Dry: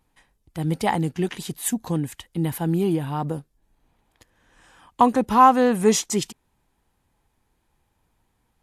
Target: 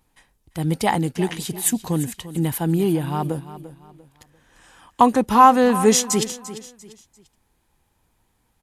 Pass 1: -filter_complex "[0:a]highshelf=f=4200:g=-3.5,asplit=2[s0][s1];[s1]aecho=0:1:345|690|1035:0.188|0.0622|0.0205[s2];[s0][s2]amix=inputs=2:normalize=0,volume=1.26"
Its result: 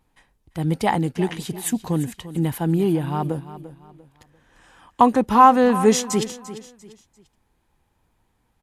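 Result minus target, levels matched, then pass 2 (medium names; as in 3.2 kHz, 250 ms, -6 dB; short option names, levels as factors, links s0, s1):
8 kHz band -5.5 dB
-filter_complex "[0:a]highshelf=f=4200:g=4.5,asplit=2[s0][s1];[s1]aecho=0:1:345|690|1035:0.188|0.0622|0.0205[s2];[s0][s2]amix=inputs=2:normalize=0,volume=1.26"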